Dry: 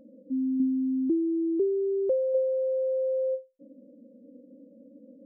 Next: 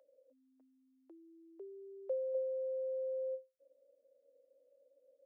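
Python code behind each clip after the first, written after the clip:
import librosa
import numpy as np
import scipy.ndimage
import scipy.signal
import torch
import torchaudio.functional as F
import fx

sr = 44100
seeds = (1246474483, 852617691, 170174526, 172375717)

y = scipy.signal.sosfilt(scipy.signal.butter(6, 550.0, 'highpass', fs=sr, output='sos'), x)
y = F.gain(torch.from_numpy(y), -6.5).numpy()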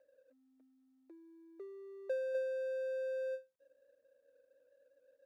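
y = scipy.signal.medfilt(x, 41)
y = F.gain(torch.from_numpy(y), 1.5).numpy()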